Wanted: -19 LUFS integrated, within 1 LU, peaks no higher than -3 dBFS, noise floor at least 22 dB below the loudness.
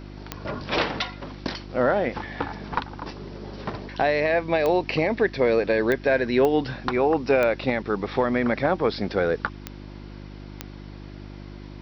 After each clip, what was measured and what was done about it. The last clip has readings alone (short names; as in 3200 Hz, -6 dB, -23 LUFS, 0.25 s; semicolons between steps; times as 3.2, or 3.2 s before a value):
clicks 7; hum 50 Hz; harmonics up to 350 Hz; hum level -38 dBFS; loudness -24.0 LUFS; peak -7.5 dBFS; loudness target -19.0 LUFS
-> de-click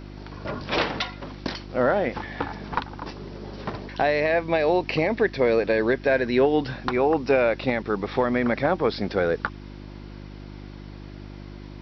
clicks 0; hum 50 Hz; harmonics up to 350 Hz; hum level -38 dBFS
-> de-hum 50 Hz, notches 7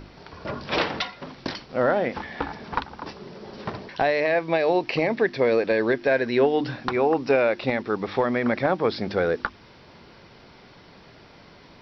hum none; loudness -24.0 LUFS; peak -8.5 dBFS; loudness target -19.0 LUFS
-> gain +5 dB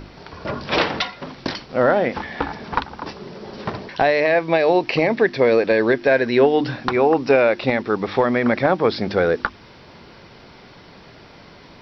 loudness -19.0 LUFS; peak -3.5 dBFS; noise floor -45 dBFS